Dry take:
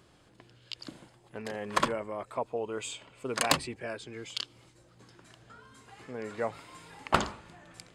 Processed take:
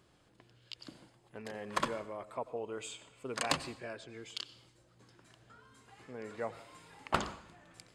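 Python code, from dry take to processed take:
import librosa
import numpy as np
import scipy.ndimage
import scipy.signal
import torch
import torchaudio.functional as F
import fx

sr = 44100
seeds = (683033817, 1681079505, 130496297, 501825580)

y = fx.lowpass(x, sr, hz=8900.0, slope=12, at=(3.4, 4.08))
y = fx.rev_plate(y, sr, seeds[0], rt60_s=0.63, hf_ratio=0.95, predelay_ms=80, drr_db=15.5)
y = y * 10.0 ** (-6.0 / 20.0)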